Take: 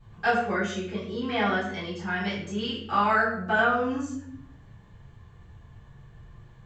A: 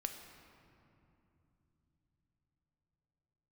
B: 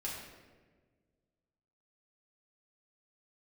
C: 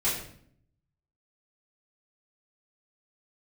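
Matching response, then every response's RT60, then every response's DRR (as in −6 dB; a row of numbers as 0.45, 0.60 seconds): C; 2.9, 1.5, 0.60 seconds; 5.0, −6.0, −10.0 decibels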